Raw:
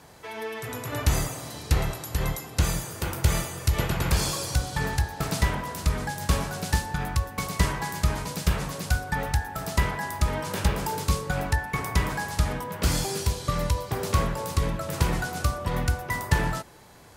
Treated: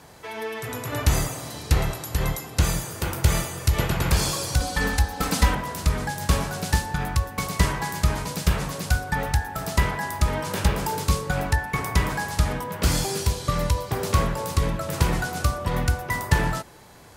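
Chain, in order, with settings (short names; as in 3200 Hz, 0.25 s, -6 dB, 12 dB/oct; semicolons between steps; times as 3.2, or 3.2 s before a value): 4.6–5.55 comb 3.9 ms, depth 91%; gain +2.5 dB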